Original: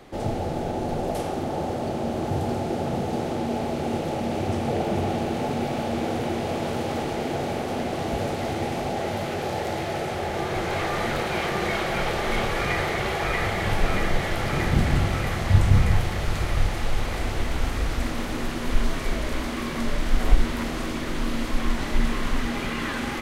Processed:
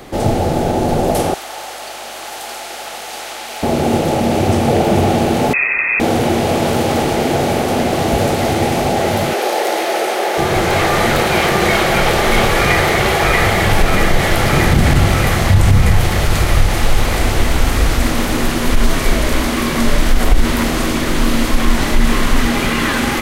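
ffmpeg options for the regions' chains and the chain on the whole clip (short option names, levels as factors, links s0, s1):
-filter_complex "[0:a]asettb=1/sr,asplit=3[s0][s1][s2];[s0]atrim=end=1.344[s3];[s1]atrim=start=1.34:end=3.63,asetpts=PTS-STARTPTS,afade=t=in:d=0.004:c=qsin,afade=t=out:st=2.286:d=0.004:c=qsin,highpass=1400,aeval=exprs='val(0)+0.000501*(sin(2*PI*50*n/s)+sin(2*PI*2*50*n/s)/2+sin(2*PI*3*50*n/s)/3+sin(2*PI*4*50*n/s)/4+sin(2*PI*5*50*n/s)/5)':c=same[s4];[s2]atrim=start=3.626[s5];[s3][s4]acrossfade=d=0.004:c1=hsin:c2=qsin[s6];[s6][s5]acrossfade=d=0.004:c1=qsin:c2=hsin,asettb=1/sr,asplit=3[s7][s8][s9];[s7]atrim=end=5.534[s10];[s8]atrim=start=5.53:end=6,asetpts=PTS-STARTPTS,afade=t=in:d=0.004:c=qsin,afade=t=out:st=0.466:d=0.004:c=qsin,equalizer=f=440:t=o:w=0.51:g=-13.5,lowpass=f=2300:t=q:w=0.5098,lowpass=f=2300:t=q:w=0.6013,lowpass=f=2300:t=q:w=0.9,lowpass=f=2300:t=q:w=2.563,afreqshift=-2700[s11];[s9]atrim=start=5.996[s12];[s10][s11]acrossfade=d=0.004:c1=hsin:c2=qsin[s13];[s13][s12]acrossfade=d=0.004:c1=qsin:c2=hsin,asettb=1/sr,asplit=3[s14][s15][s16];[s14]atrim=end=9.334[s17];[s15]atrim=start=9.33:end=10.38,asetpts=PTS-STARTPTS,afade=t=in:d=0.004:c=qsin,afade=t=out:st=1.046:d=0.004:c=qsin,highpass=f=330:w=0.5412,highpass=f=330:w=1.3066,bandreject=f=7400:w=22[s18];[s16]atrim=start=10.376[s19];[s17][s18]acrossfade=d=0.004:c1=hsin:c2=qsin[s20];[s20][s19]acrossfade=d=0.004:c1=qsin:c2=hsin,highshelf=f=8100:g=9,alimiter=level_in=4.47:limit=0.891:release=50:level=0:latency=1,volume=0.891"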